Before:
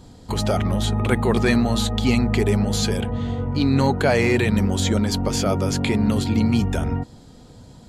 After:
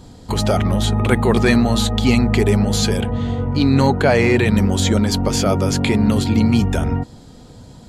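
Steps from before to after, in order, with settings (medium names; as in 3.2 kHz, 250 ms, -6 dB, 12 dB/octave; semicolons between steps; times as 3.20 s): 3.90–4.46 s: treble shelf 5.7 kHz -7 dB; trim +4 dB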